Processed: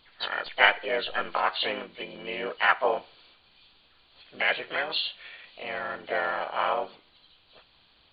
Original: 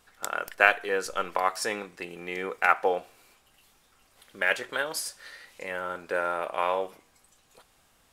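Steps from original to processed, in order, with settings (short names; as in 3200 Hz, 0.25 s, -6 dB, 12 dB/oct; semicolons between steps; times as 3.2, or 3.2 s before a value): nonlinear frequency compression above 2300 Hz 4:1; harmoniser +4 st 0 dB, +5 st -13 dB; gain -3 dB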